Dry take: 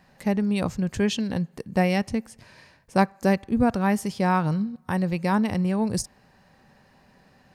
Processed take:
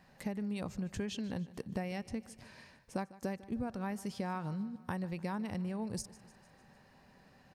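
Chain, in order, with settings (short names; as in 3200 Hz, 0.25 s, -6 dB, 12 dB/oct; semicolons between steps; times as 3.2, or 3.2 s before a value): compressor 6:1, threshold -30 dBFS, peak gain reduction 16 dB; feedback echo 0.15 s, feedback 57%, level -19 dB; gain -5 dB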